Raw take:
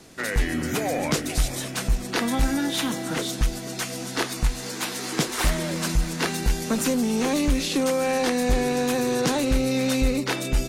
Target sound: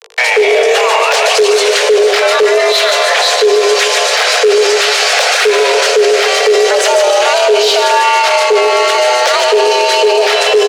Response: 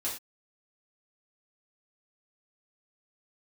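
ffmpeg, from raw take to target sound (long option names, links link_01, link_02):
-filter_complex "[0:a]acrossover=split=770|1200[link_01][link_02][link_03];[link_01]equalizer=frequency=140:width_type=o:width=0.67:gain=-8[link_04];[link_02]aecho=1:1:0.9:0.92[link_05];[link_03]acontrast=66[link_06];[link_04][link_05][link_06]amix=inputs=3:normalize=0,acrusher=bits=5:mix=0:aa=0.000001,lowpass=4500,asoftclip=type=tanh:threshold=-19dB,asplit=2[link_07][link_08];[link_08]aecho=0:1:147|294|441|588|735:0.447|0.201|0.0905|0.0407|0.0183[link_09];[link_07][link_09]amix=inputs=2:normalize=0,afreqshift=350,equalizer=frequency=430:width_type=o:width=0.31:gain=13.5,bandreject=frequency=55.96:width_type=h:width=4,bandreject=frequency=111.92:width_type=h:width=4,bandreject=frequency=167.88:width_type=h:width=4,bandreject=frequency=223.84:width_type=h:width=4,bandreject=frequency=279.8:width_type=h:width=4,bandreject=frequency=335.76:width_type=h:width=4,bandreject=frequency=391.72:width_type=h:width=4,bandreject=frequency=447.68:width_type=h:width=4,bandreject=frequency=503.64:width_type=h:width=4,bandreject=frequency=559.6:width_type=h:width=4,bandreject=frequency=615.56:width_type=h:width=4,bandreject=frequency=671.52:width_type=h:width=4,bandreject=frequency=727.48:width_type=h:width=4,bandreject=frequency=783.44:width_type=h:width=4,bandreject=frequency=839.4:width_type=h:width=4,bandreject=frequency=895.36:width_type=h:width=4,bandreject=frequency=951.32:width_type=h:width=4,bandreject=frequency=1007.28:width_type=h:width=4,bandreject=frequency=1063.24:width_type=h:width=4,afreqshift=23,alimiter=level_in=24dB:limit=-1dB:release=50:level=0:latency=1,volume=-1dB"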